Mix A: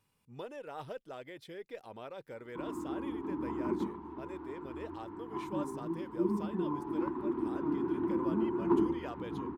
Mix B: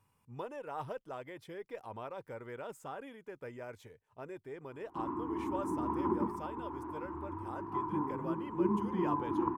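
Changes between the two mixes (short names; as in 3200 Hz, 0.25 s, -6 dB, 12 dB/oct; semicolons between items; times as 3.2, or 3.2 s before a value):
background: entry +2.40 s; master: add fifteen-band EQ 100 Hz +8 dB, 1000 Hz +7 dB, 4000 Hz -7 dB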